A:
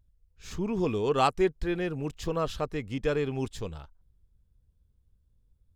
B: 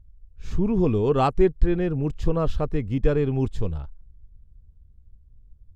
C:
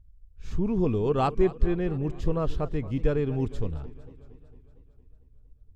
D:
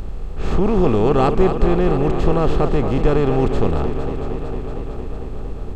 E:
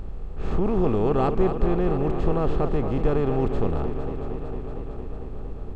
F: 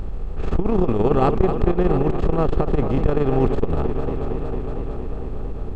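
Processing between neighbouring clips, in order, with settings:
spectral tilt −3 dB per octave; level +1.5 dB
feedback echo with a swinging delay time 228 ms, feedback 62%, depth 154 cents, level −17.5 dB; level −4 dB
compressor on every frequency bin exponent 0.4; level +4.5 dB
high-shelf EQ 2,800 Hz −8.5 dB; level −6 dB
saturating transformer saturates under 91 Hz; level +6.5 dB

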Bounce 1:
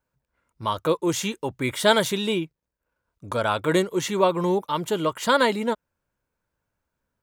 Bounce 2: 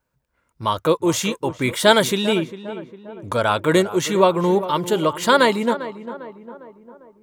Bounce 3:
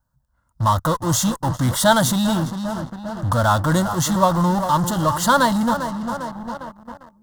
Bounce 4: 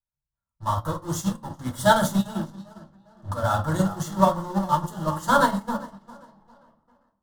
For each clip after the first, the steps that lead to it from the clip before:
tape delay 401 ms, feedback 58%, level −12 dB, low-pass 1,400 Hz; level +4.5 dB
low-shelf EQ 190 Hz +9.5 dB; in parallel at −8.5 dB: fuzz pedal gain 37 dB, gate −40 dBFS; on the sum: phaser with its sweep stopped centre 990 Hz, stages 4
dynamic equaliser 4,000 Hz, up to −4 dB, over −38 dBFS, Q 2.3; convolution reverb RT60 0.60 s, pre-delay 5 ms, DRR 1 dB; expander for the loud parts 2.5 to 1, over −25 dBFS; level −3.5 dB

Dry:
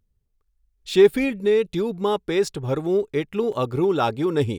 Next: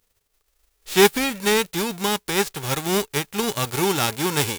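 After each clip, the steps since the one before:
spectral envelope flattened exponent 0.3
level −1 dB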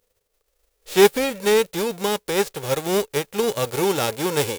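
parametric band 510 Hz +13 dB 0.59 octaves
level −3 dB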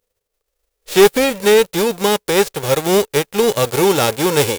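leveller curve on the samples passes 2

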